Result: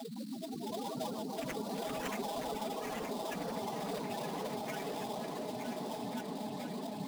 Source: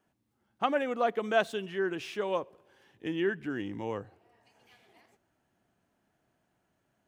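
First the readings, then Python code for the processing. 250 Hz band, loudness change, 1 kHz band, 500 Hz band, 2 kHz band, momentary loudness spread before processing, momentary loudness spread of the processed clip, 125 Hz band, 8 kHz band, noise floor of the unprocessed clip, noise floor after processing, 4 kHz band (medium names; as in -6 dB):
-1.5 dB, -7.5 dB, -3.0 dB, -6.5 dB, -9.5 dB, 9 LU, 3 LU, +0.5 dB, no reading, -77 dBFS, -43 dBFS, -0.5 dB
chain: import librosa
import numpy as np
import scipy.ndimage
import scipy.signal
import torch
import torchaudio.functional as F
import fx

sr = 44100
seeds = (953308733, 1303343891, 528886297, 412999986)

y = np.sign(x) * np.sqrt(np.mean(np.square(x)))
y = fx.noise_vocoder(y, sr, seeds[0], bands=4)
y = y + 0.33 * np.pad(y, (int(4.7 * sr / 1000.0), 0))[:len(y)]
y = fx.spec_topn(y, sr, count=2)
y = fx.bass_treble(y, sr, bass_db=-6, treble_db=10)
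y = y + 10.0 ** (-7.0 / 20.0) * np.pad(y, (int(921 * sr / 1000.0), 0))[:len(y)]
y = fx.sample_hold(y, sr, seeds[1], rate_hz=4300.0, jitter_pct=20)
y = fx.echo_pitch(y, sr, ms=162, semitones=3, count=3, db_per_echo=-6.0)
y = fx.low_shelf(y, sr, hz=470.0, db=-5.0)
y = fx.echo_opening(y, sr, ms=479, hz=400, octaves=1, feedback_pct=70, wet_db=0)
y = fx.band_squash(y, sr, depth_pct=40)
y = y * librosa.db_to_amplitude(5.5)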